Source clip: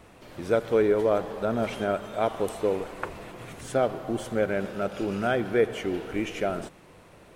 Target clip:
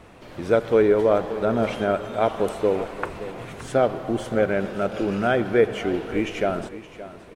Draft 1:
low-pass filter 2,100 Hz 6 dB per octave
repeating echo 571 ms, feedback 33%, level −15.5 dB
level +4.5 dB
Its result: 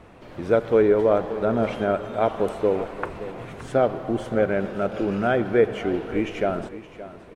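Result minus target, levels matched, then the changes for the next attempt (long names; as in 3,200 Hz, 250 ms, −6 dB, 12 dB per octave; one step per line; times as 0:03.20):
4,000 Hz band −3.5 dB
change: low-pass filter 5,200 Hz 6 dB per octave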